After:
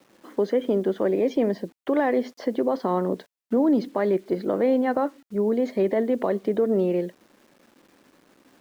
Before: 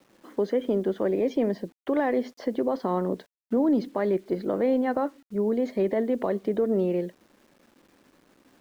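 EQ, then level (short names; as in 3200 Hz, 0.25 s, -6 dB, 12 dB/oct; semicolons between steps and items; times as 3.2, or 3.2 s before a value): low shelf 88 Hz -8.5 dB; +3.0 dB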